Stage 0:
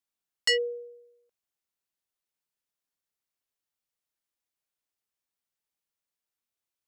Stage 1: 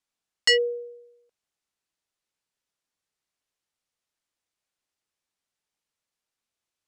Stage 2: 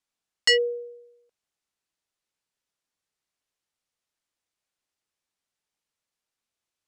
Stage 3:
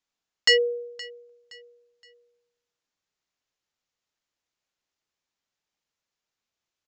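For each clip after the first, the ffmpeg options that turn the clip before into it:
-af "lowpass=8.9k,volume=5dB"
-af anull
-af "aecho=1:1:519|1038|1557:0.1|0.037|0.0137,aresample=16000,aresample=44100,volume=1dB"

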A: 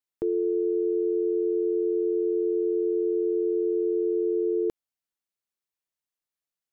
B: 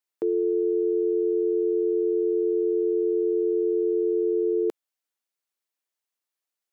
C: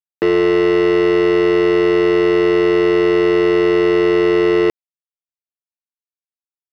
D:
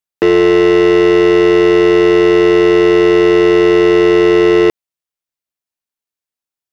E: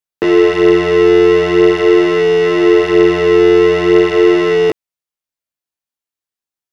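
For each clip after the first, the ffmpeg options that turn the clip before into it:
-af "highpass=300,volume=3dB"
-af "bass=f=250:g=9,treble=f=4k:g=-2,acrusher=bits=3:mix=0:aa=0.5,volume=8dB"
-af "acontrast=73"
-af "flanger=delay=18.5:depth=6.7:speed=0.43,volume=2dB"

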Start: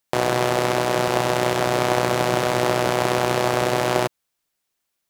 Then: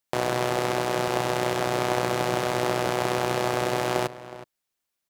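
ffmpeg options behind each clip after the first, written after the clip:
-filter_complex "[0:a]asplit=2[a][b];[b]adelay=367.3,volume=-15dB,highshelf=f=4k:g=-8.27[c];[a][c]amix=inputs=2:normalize=0,volume=-5dB"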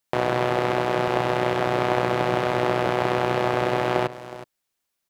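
-filter_complex "[0:a]acrossover=split=3700[a][b];[b]acompressor=threshold=-47dB:ratio=4:attack=1:release=60[c];[a][c]amix=inputs=2:normalize=0,volume=3dB"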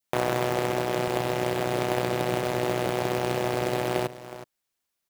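-af "adynamicequalizer=threshold=0.0126:dfrequency=1200:dqfactor=1:tfrequency=1200:tqfactor=1:attack=5:release=100:ratio=0.375:range=3:mode=cutabove:tftype=bell,acrusher=bits=3:mode=log:mix=0:aa=0.000001,volume=-2.5dB"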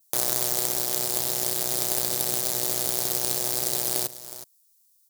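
-af "highshelf=f=3.7k:g=11,aexciter=amount=6.6:drive=3.3:freq=3.8k,volume=-9.5dB"

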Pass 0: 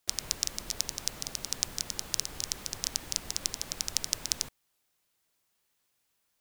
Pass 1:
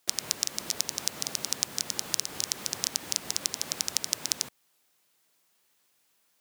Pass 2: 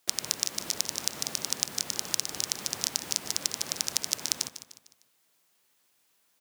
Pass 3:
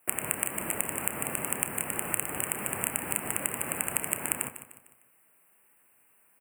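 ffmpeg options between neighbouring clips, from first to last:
-af "highpass=150,acompressor=threshold=-32dB:ratio=2,volume=6.5dB"
-af "aecho=1:1:151|302|453|604:0.237|0.102|0.0438|0.0189"
-filter_complex "[0:a]asuperstop=centerf=4800:order=12:qfactor=0.92,asplit=2[a][b];[b]adelay=30,volume=-13dB[c];[a][c]amix=inputs=2:normalize=0,volume=6.5dB"

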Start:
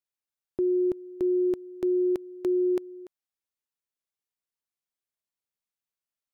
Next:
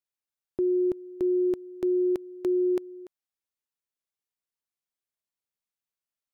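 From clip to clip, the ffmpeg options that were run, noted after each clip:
-af anull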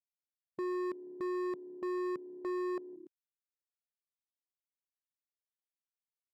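-af "afwtdn=0.0251,volume=29.5dB,asoftclip=hard,volume=-29.5dB,volume=-4.5dB"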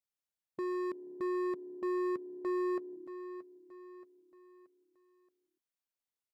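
-af "aecho=1:1:627|1254|1881|2508:0.211|0.0951|0.0428|0.0193"

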